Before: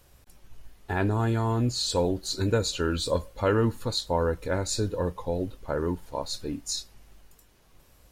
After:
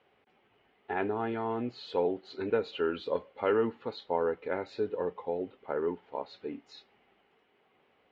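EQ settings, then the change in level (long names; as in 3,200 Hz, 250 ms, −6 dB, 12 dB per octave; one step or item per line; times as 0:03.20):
loudspeaker in its box 220–3,200 Hz, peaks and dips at 230 Hz +4 dB, 420 Hz +10 dB, 780 Hz +9 dB, 1,300 Hz +4 dB, 2,100 Hz +8 dB, 3,000 Hz +6 dB
−8.5 dB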